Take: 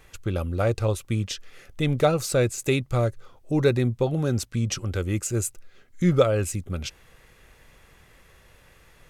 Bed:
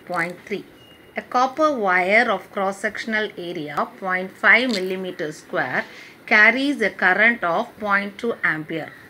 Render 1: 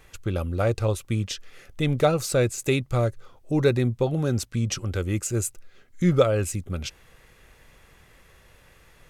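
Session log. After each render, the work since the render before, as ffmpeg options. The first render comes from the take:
ffmpeg -i in.wav -af anull out.wav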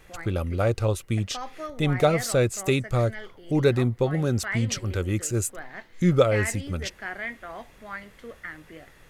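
ffmpeg -i in.wav -i bed.wav -filter_complex "[1:a]volume=-18dB[link_01];[0:a][link_01]amix=inputs=2:normalize=0" out.wav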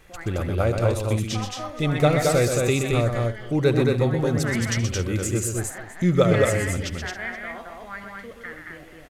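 ffmpeg -i in.wav -af "aecho=1:1:74|126|221|272|472:0.133|0.473|0.708|0.188|0.106" out.wav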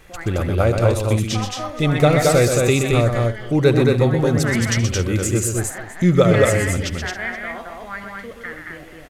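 ffmpeg -i in.wav -af "volume=5dB,alimiter=limit=-3dB:level=0:latency=1" out.wav

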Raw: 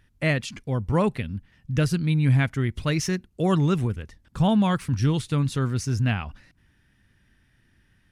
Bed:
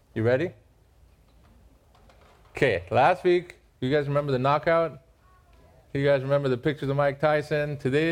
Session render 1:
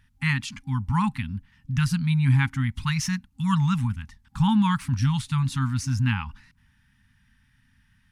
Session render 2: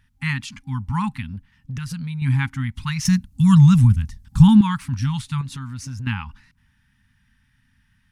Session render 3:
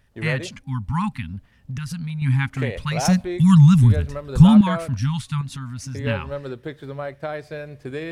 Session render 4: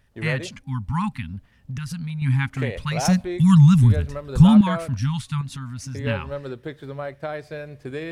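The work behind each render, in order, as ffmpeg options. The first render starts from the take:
ffmpeg -i in.wav -af "afftfilt=real='re*(1-between(b*sr/4096,270,800))':imag='im*(1-between(b*sr/4096,270,800))':win_size=4096:overlap=0.75,adynamicequalizer=threshold=0.01:dfrequency=880:dqfactor=1.3:tfrequency=880:tqfactor=1.3:attack=5:release=100:ratio=0.375:range=1.5:mode=boostabove:tftype=bell" out.wav
ffmpeg -i in.wav -filter_complex "[0:a]asettb=1/sr,asplit=3[link_01][link_02][link_03];[link_01]atrim=end=1.244[link_04];[link_02]atrim=start=1.24:end=2.22,asetpts=PTS-STARTPTS,afade=type=in:duration=0.004:curve=qsin,afade=type=out:start_time=0.976:duration=0.004:curve=qsin,acompressor=threshold=-26dB:ratio=6:attack=3.2:release=140:knee=1:detection=peak[link_05];[link_03]atrim=start=2.216[link_06];[link_04][link_05]acrossfade=duration=0.004:curve1=hsin:curve2=qsin[link_07];[link_07][link_06]acrossfade=duration=0.004:curve1=qsin:curve2=hsin,asettb=1/sr,asplit=3[link_08][link_09][link_10];[link_08]atrim=end=3.054[link_11];[link_09]atrim=start=3.05:end=4.61,asetpts=PTS-STARTPTS,afade=type=in:duration=0.004:curve=qsin,afade=type=out:start_time=1.556:duration=0.004:curve=qsin,bass=frequency=250:gain=14,treble=frequency=4000:gain=10[link_12];[link_10]atrim=start=4.606[link_13];[link_11][link_12]acrossfade=duration=0.004:curve1=hsin:curve2=qsin[link_14];[link_14][link_13]acrossfade=duration=0.004:curve1=qsin:curve2=hsin,asettb=1/sr,asplit=3[link_15][link_16][link_17];[link_15]atrim=end=5.414[link_18];[link_16]atrim=start=5.41:end=6.07,asetpts=PTS-STARTPTS,afade=type=in:duration=0.004:curve=qsin,afade=type=out:start_time=0.656:duration=0.004:curve=qsin,acompressor=threshold=-30dB:ratio=3:attack=3.2:release=140:knee=1:detection=peak[link_19];[link_17]atrim=start=6.066[link_20];[link_18][link_19]acrossfade=duration=0.004:curve1=hsin:curve2=qsin[link_21];[link_21][link_20]acrossfade=duration=0.004:curve1=qsin:curve2=hsin" out.wav
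ffmpeg -i in.wav -i bed.wav -filter_complex "[1:a]volume=-7dB[link_01];[0:a][link_01]amix=inputs=2:normalize=0" out.wav
ffmpeg -i in.wav -af "volume=-1dB,alimiter=limit=-3dB:level=0:latency=1" out.wav

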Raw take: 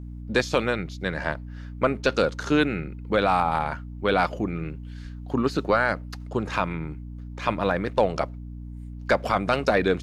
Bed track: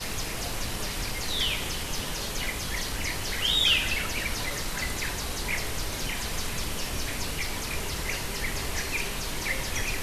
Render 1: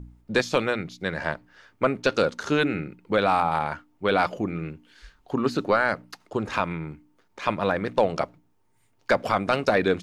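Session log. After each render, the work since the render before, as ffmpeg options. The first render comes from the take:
ffmpeg -i in.wav -af "bandreject=frequency=60:width_type=h:width=4,bandreject=frequency=120:width_type=h:width=4,bandreject=frequency=180:width_type=h:width=4,bandreject=frequency=240:width_type=h:width=4,bandreject=frequency=300:width_type=h:width=4" out.wav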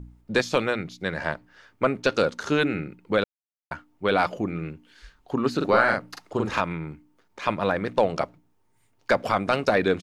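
ffmpeg -i in.wav -filter_complex "[0:a]asplit=3[link_01][link_02][link_03];[link_01]afade=type=out:start_time=5.6:duration=0.02[link_04];[link_02]asplit=2[link_05][link_06];[link_06]adelay=43,volume=-2dB[link_07];[link_05][link_07]amix=inputs=2:normalize=0,afade=type=in:start_time=5.6:duration=0.02,afade=type=out:start_time=6.6:duration=0.02[link_08];[link_03]afade=type=in:start_time=6.6:duration=0.02[link_09];[link_04][link_08][link_09]amix=inputs=3:normalize=0,asplit=3[link_10][link_11][link_12];[link_10]atrim=end=3.24,asetpts=PTS-STARTPTS,afade=type=out:start_time=3.236:duration=0.004:curve=hsin[link_13];[link_11]atrim=start=3.24:end=3.71,asetpts=PTS-STARTPTS,volume=0[link_14];[link_12]atrim=start=3.71,asetpts=PTS-STARTPTS,afade=type=in:duration=0.004:curve=hsin[link_15];[link_13][link_14][link_15]concat=n=3:v=0:a=1" out.wav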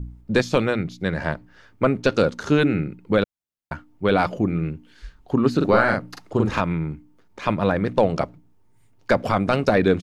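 ffmpeg -i in.wav -af "lowshelf=frequency=320:gain=10.5" out.wav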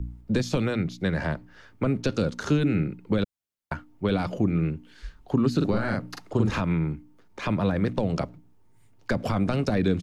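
ffmpeg -i in.wav -filter_complex "[0:a]acrossover=split=400[link_01][link_02];[link_02]alimiter=limit=-16.5dB:level=0:latency=1:release=61[link_03];[link_01][link_03]amix=inputs=2:normalize=0,acrossover=split=240|3000[link_04][link_05][link_06];[link_05]acompressor=threshold=-26dB:ratio=6[link_07];[link_04][link_07][link_06]amix=inputs=3:normalize=0" out.wav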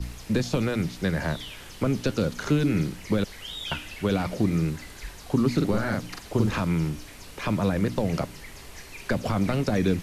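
ffmpeg -i in.wav -i bed.wav -filter_complex "[1:a]volume=-12.5dB[link_01];[0:a][link_01]amix=inputs=2:normalize=0" out.wav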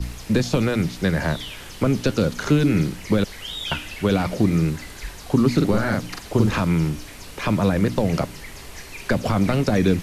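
ffmpeg -i in.wav -af "volume=5dB" out.wav

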